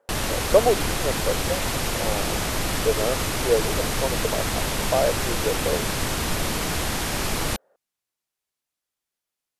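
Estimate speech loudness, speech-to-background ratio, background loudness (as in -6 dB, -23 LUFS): -27.0 LUFS, -1.5 dB, -25.5 LUFS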